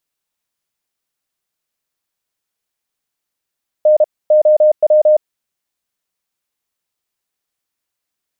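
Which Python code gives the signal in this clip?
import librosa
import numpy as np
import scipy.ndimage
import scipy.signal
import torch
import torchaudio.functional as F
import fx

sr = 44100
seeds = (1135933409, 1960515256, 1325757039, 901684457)

y = fx.morse(sr, text='N OW', wpm=32, hz=611.0, level_db=-6.0)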